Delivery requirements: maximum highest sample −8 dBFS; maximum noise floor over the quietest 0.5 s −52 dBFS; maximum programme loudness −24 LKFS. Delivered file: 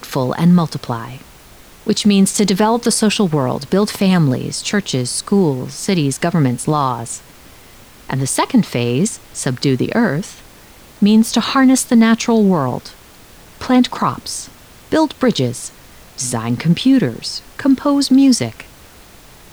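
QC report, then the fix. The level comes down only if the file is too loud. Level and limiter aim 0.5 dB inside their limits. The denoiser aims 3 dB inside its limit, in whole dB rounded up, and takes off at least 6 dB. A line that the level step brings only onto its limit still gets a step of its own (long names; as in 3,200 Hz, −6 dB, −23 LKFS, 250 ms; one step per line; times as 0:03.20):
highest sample −4.0 dBFS: out of spec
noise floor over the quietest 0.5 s −42 dBFS: out of spec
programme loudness −15.5 LKFS: out of spec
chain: broadband denoise 6 dB, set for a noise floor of −42 dBFS
level −9 dB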